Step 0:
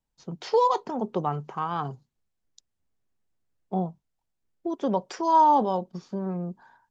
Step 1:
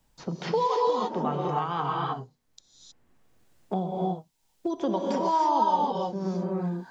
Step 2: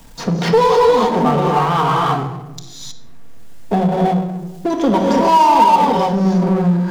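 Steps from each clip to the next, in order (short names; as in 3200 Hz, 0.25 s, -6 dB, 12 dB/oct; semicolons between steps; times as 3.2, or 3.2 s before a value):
dynamic EQ 3400 Hz, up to +6 dB, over -41 dBFS, Q 0.84; non-linear reverb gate 0.34 s rising, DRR -2 dB; three-band squash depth 70%; gain -5 dB
shoebox room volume 2500 m³, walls furnished, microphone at 1.7 m; power-law curve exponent 0.7; gain +8 dB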